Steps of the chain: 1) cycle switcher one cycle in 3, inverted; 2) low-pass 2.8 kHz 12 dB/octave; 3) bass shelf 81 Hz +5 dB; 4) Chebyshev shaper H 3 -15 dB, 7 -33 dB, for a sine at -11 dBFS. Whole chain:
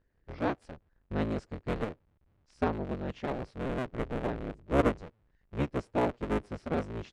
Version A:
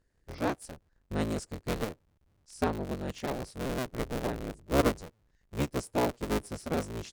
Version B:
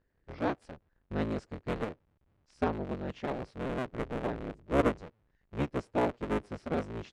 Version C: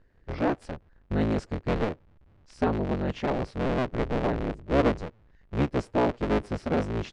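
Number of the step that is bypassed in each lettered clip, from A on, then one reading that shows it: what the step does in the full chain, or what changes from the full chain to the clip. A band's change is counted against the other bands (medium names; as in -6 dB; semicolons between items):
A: 2, 4 kHz band +7.0 dB; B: 3, 125 Hz band -1.5 dB; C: 4, 4 kHz band +1.5 dB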